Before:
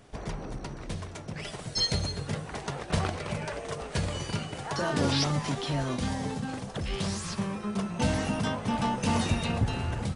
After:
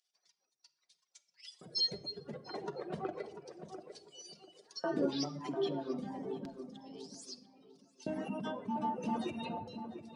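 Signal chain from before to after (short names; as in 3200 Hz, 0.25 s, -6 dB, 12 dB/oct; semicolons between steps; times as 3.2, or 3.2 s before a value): spectral contrast raised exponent 1.8; LFO high-pass square 0.31 Hz 340–4800 Hz; reverb removal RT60 0.82 s; tape echo 0.695 s, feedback 33%, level -7 dB, low-pass 1000 Hz; shoebox room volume 3700 m³, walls furnished, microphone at 0.99 m; gain -6 dB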